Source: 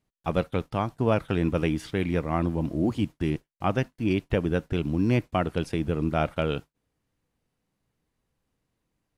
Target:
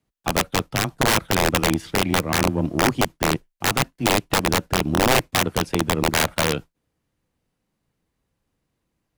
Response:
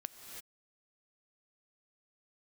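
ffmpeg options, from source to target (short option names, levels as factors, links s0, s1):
-af "afreqshift=14,aeval=exprs='0.355*(cos(1*acos(clip(val(0)/0.355,-1,1)))-cos(1*PI/2))+0.0224*(cos(7*acos(clip(val(0)/0.355,-1,1)))-cos(7*PI/2))':c=same,aeval=exprs='(mod(7.08*val(0)+1,2)-1)/7.08':c=same,volume=2.37"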